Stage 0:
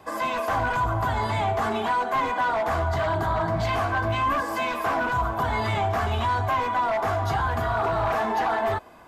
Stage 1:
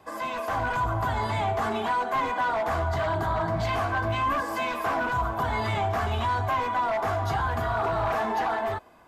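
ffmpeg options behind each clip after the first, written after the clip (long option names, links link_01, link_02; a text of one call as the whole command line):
ffmpeg -i in.wav -af "dynaudnorm=framelen=100:gausssize=11:maxgain=3dB,volume=-5dB" out.wav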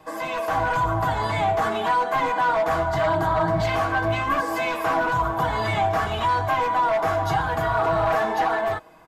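ffmpeg -i in.wav -af "aecho=1:1:6.3:0.57,volume=3dB" out.wav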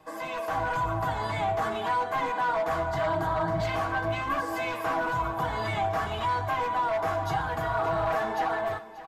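ffmpeg -i in.wav -af "aecho=1:1:585:0.168,volume=-6dB" out.wav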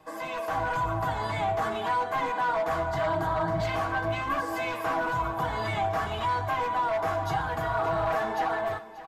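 ffmpeg -i in.wav -af anull out.wav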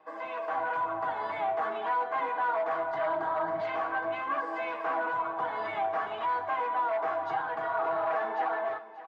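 ffmpeg -i in.wav -af "highpass=400,lowpass=2200,volume=-1.5dB" out.wav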